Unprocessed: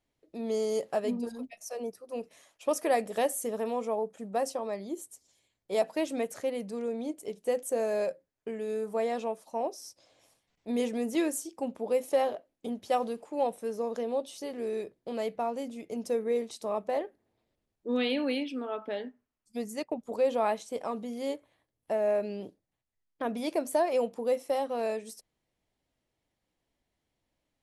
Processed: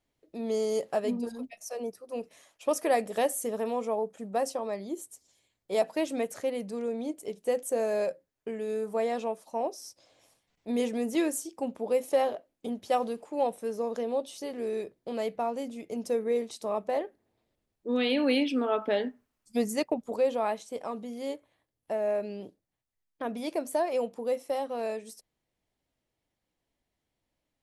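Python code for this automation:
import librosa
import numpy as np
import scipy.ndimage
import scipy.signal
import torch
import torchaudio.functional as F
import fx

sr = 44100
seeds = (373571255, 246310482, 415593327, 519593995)

y = fx.gain(x, sr, db=fx.line((18.0, 1.0), (18.48, 7.5), (19.7, 7.5), (20.39, -1.5)))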